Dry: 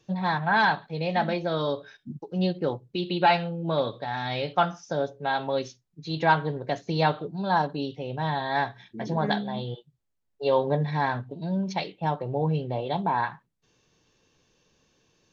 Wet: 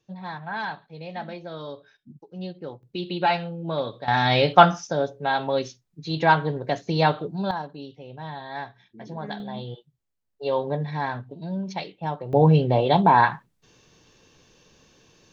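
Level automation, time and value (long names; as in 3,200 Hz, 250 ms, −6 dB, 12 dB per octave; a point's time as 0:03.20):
−9 dB
from 0:02.83 −1.5 dB
from 0:04.08 +10 dB
from 0:04.87 +3 dB
from 0:07.51 −8 dB
from 0:09.40 −2 dB
from 0:12.33 +9.5 dB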